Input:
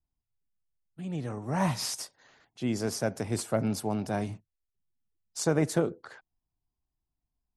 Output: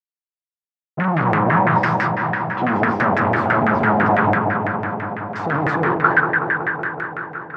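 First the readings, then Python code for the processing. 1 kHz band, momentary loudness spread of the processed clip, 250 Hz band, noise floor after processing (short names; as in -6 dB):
+22.0 dB, 10 LU, +11.0 dB, under -85 dBFS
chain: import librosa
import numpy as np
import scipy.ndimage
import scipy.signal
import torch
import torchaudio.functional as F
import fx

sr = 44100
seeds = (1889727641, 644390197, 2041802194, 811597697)

y = fx.over_compress(x, sr, threshold_db=-32.0, ratio=-0.5)
y = scipy.signal.sosfilt(scipy.signal.butter(2, 7800.0, 'lowpass', fs=sr, output='sos'), y)
y = fx.fuzz(y, sr, gain_db=53.0, gate_db=-55.0)
y = scipy.signal.sosfilt(scipy.signal.butter(2, 170.0, 'highpass', fs=sr, output='sos'), y)
y = fx.high_shelf(y, sr, hz=3800.0, db=-12.0)
y = fx.doubler(y, sr, ms=42.0, db=-11.0)
y = fx.echo_wet_lowpass(y, sr, ms=187, feedback_pct=80, hz=2600.0, wet_db=-4.5)
y = fx.filter_lfo_lowpass(y, sr, shape='saw_down', hz=6.0, low_hz=650.0, high_hz=1900.0, q=3.0)
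y = fx.graphic_eq(y, sr, hz=(250, 500, 2000), db=(-3, -8, 3))
y = y * 10.0 ** (-1.5 / 20.0)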